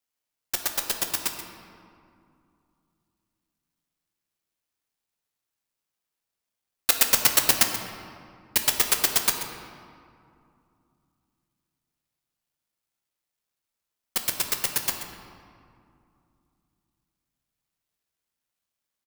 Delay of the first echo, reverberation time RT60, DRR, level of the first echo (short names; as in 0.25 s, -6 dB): 0.132 s, 2.4 s, 3.5 dB, -12.0 dB